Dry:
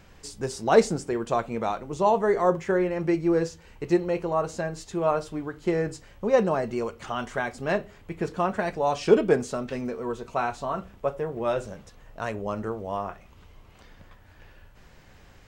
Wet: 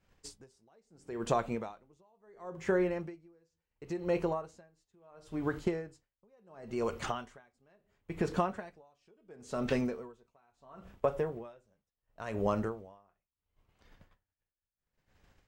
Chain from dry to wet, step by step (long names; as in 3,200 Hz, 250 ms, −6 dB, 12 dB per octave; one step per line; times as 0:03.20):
downward expander −38 dBFS
downward compressor 6 to 1, threshold −33 dBFS, peak gain reduction 20 dB
tremolo with a sine in dB 0.72 Hz, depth 39 dB
level +7 dB